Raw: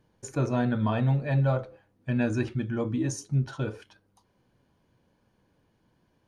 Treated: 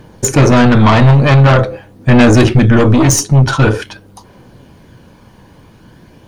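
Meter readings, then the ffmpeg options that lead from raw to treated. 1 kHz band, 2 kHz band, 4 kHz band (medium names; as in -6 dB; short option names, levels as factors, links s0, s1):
+21.5 dB, +22.0 dB, +25.5 dB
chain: -af "aeval=exprs='0.224*(cos(1*acos(clip(val(0)/0.224,-1,1)))-cos(1*PI/2))+0.0562*(cos(5*acos(clip(val(0)/0.224,-1,1)))-cos(5*PI/2))+0.0447*(cos(8*acos(clip(val(0)/0.224,-1,1)))-cos(8*PI/2))':c=same,apsyclip=13.3,aphaser=in_gain=1:out_gain=1:delay=1.1:decay=0.23:speed=0.46:type=triangular,volume=0.668"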